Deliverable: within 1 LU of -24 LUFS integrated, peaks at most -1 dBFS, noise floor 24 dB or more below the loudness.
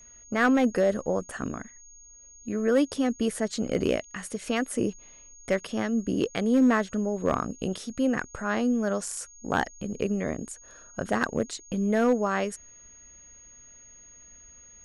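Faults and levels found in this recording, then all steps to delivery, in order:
clipped samples 0.4%; clipping level -15.0 dBFS; steady tone 6.6 kHz; tone level -49 dBFS; loudness -27.5 LUFS; peak level -15.0 dBFS; loudness target -24.0 LUFS
-> clip repair -15 dBFS; band-stop 6.6 kHz, Q 30; trim +3.5 dB

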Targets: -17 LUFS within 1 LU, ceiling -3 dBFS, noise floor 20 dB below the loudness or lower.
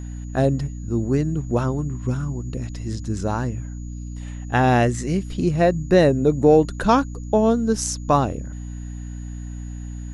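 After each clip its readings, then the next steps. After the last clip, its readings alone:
hum 60 Hz; highest harmonic 300 Hz; hum level -29 dBFS; steady tone 6.8 kHz; tone level -50 dBFS; loudness -21.0 LUFS; peak level -3.5 dBFS; loudness target -17.0 LUFS
-> de-hum 60 Hz, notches 5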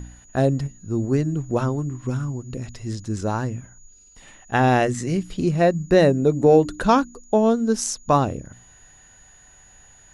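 hum not found; steady tone 6.8 kHz; tone level -50 dBFS
-> band-stop 6.8 kHz, Q 30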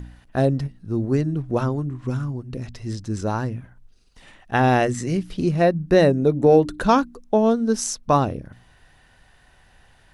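steady tone not found; loudness -21.5 LUFS; peak level -4.5 dBFS; loudness target -17.0 LUFS
-> trim +4.5 dB; peak limiter -3 dBFS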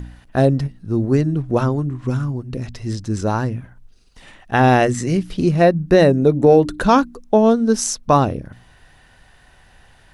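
loudness -17.5 LUFS; peak level -3.0 dBFS; noise floor -51 dBFS

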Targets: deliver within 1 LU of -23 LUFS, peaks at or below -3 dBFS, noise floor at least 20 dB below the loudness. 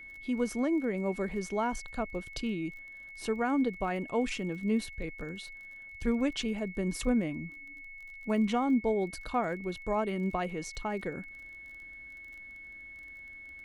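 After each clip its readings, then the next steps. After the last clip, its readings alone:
tick rate 26 per s; steady tone 2.2 kHz; tone level -45 dBFS; loudness -32.5 LUFS; peak level -17.0 dBFS; loudness target -23.0 LUFS
-> de-click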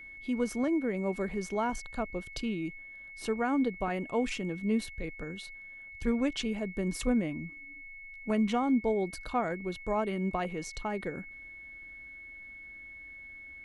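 tick rate 0.073 per s; steady tone 2.2 kHz; tone level -45 dBFS
-> band-stop 2.2 kHz, Q 30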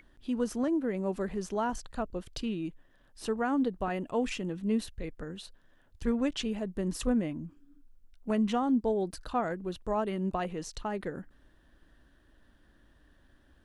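steady tone not found; loudness -32.5 LUFS; peak level -17.0 dBFS; loudness target -23.0 LUFS
-> trim +9.5 dB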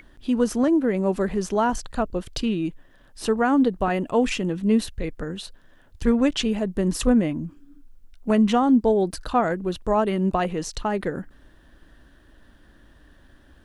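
loudness -23.0 LUFS; peak level -7.5 dBFS; noise floor -54 dBFS

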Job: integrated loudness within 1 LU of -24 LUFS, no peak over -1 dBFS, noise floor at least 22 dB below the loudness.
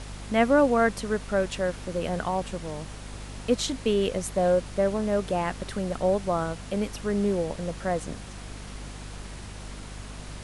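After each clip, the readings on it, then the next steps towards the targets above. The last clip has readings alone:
hum 50 Hz; highest harmonic 250 Hz; hum level -38 dBFS; noise floor -41 dBFS; noise floor target -49 dBFS; loudness -27.0 LUFS; peak level -8.5 dBFS; loudness target -24.0 LUFS
-> hum notches 50/100/150/200/250 Hz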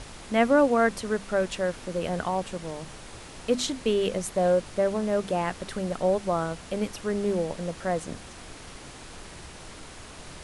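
hum not found; noise floor -44 dBFS; noise floor target -49 dBFS
-> noise print and reduce 6 dB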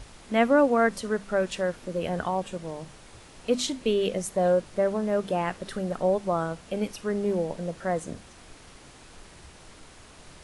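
noise floor -50 dBFS; loudness -27.0 LUFS; peak level -9.0 dBFS; loudness target -24.0 LUFS
-> trim +3 dB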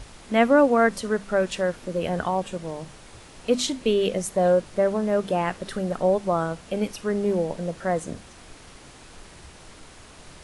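loudness -24.0 LUFS; peak level -6.0 dBFS; noise floor -47 dBFS

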